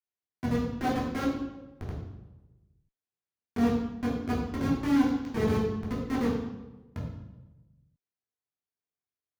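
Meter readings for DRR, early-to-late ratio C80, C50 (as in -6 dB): -6.0 dB, 5.5 dB, 1.5 dB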